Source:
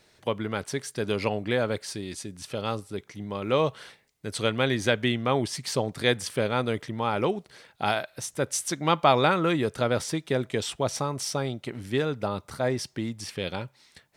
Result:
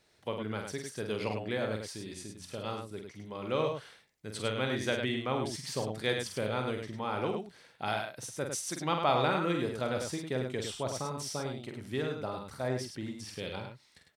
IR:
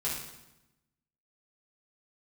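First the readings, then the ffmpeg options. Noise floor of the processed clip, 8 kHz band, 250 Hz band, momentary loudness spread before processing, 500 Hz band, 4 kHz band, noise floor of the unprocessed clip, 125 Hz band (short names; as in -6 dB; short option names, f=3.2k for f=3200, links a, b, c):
-65 dBFS, -6.5 dB, -6.5 dB, 11 LU, -6.5 dB, -6.5 dB, -63 dBFS, -6.5 dB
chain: -af "aecho=1:1:46.65|102:0.501|0.501,volume=-8.5dB"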